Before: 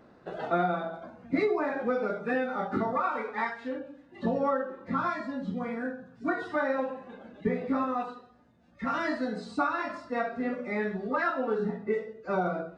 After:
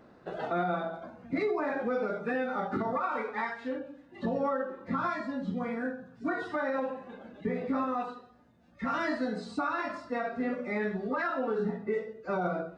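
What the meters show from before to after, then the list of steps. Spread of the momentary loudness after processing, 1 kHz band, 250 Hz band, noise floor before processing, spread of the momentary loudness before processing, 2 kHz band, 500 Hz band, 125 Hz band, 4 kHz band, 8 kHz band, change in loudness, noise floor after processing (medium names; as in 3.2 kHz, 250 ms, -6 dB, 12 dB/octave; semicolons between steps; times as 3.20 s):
7 LU, -2.0 dB, -1.5 dB, -58 dBFS, 9 LU, -2.0 dB, -2.0 dB, -1.5 dB, -1.0 dB, no reading, -2.0 dB, -58 dBFS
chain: peak limiter -22 dBFS, peak gain reduction 6.5 dB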